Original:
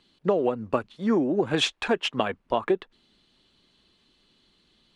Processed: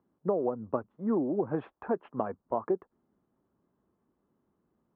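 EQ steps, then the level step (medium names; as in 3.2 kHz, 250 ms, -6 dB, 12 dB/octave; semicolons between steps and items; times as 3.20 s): high-pass 73 Hz; low-pass 1.2 kHz 24 dB/octave; -5.5 dB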